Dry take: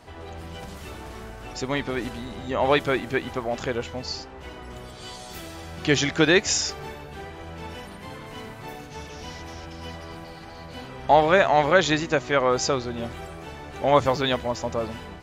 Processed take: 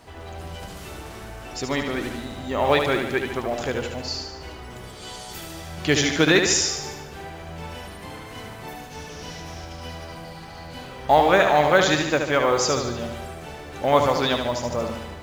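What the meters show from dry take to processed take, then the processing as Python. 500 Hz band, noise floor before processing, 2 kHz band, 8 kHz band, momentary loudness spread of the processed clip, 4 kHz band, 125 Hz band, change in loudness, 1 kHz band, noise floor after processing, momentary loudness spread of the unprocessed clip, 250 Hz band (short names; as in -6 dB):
+1.5 dB, -41 dBFS, +1.5 dB, +4.0 dB, 20 LU, +2.5 dB, +1.0 dB, +1.5 dB, +1.5 dB, -39 dBFS, 20 LU, +1.5 dB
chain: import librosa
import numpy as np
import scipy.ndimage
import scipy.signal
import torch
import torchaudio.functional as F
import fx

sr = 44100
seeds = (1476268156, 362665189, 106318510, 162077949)

p1 = fx.quant_companded(x, sr, bits=8)
p2 = fx.high_shelf(p1, sr, hz=5800.0, db=4.5)
y = p2 + fx.echo_feedback(p2, sr, ms=74, feedback_pct=56, wet_db=-6, dry=0)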